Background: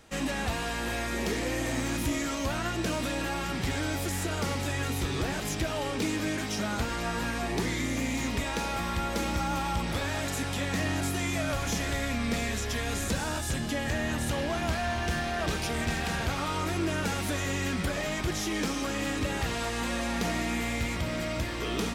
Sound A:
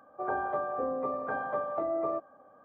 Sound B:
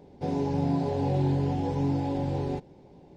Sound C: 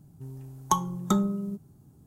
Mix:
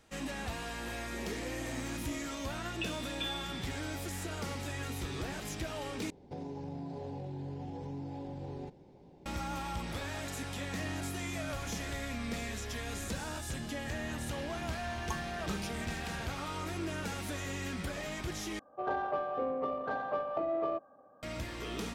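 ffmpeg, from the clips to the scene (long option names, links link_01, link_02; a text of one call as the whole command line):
ffmpeg -i bed.wav -i cue0.wav -i cue1.wav -i cue2.wav -filter_complex "[3:a]asplit=2[link_01][link_02];[0:a]volume=-8dB[link_03];[link_01]lowpass=frequency=3100:width_type=q:width=0.5098,lowpass=frequency=3100:width_type=q:width=0.6013,lowpass=frequency=3100:width_type=q:width=0.9,lowpass=frequency=3100:width_type=q:width=2.563,afreqshift=-3700[link_04];[2:a]acompressor=threshold=-33dB:ratio=6:attack=3.2:release=140:knee=1:detection=peak[link_05];[1:a]adynamicsmooth=sensitivity=2.5:basefreq=1700[link_06];[link_03]asplit=3[link_07][link_08][link_09];[link_07]atrim=end=6.104[link_10];[link_05]atrim=end=3.16,asetpts=PTS-STARTPTS,volume=-5dB[link_11];[link_08]atrim=start=9.256:end=18.594[link_12];[link_06]atrim=end=2.64,asetpts=PTS-STARTPTS,volume=-1.5dB[link_13];[link_09]atrim=start=21.226[link_14];[link_04]atrim=end=2.06,asetpts=PTS-STARTPTS,volume=-16dB,afade=type=in:duration=0.004:curve=hsin,afade=type=out:start_time=2.056:duration=0.004:curve=hsin,adelay=2100[link_15];[link_02]atrim=end=2.06,asetpts=PTS-STARTPTS,volume=-17dB,afade=type=in:duration=0.004:curve=hsin,afade=type=out:start_time=2.056:duration=0.004:curve=hsin,adelay=14390[link_16];[link_10][link_11]acrossfade=duration=0.004:curve1=hsin:curve2=hsin[link_17];[link_17][link_12]acrossfade=duration=0.004:curve1=hsin:curve2=hsin[link_18];[link_18][link_13]acrossfade=duration=0.004:curve1=hsin:curve2=hsin[link_19];[link_19][link_14]acrossfade=duration=0.004:curve1=hsin:curve2=hsin[link_20];[link_20][link_15][link_16]amix=inputs=3:normalize=0" out.wav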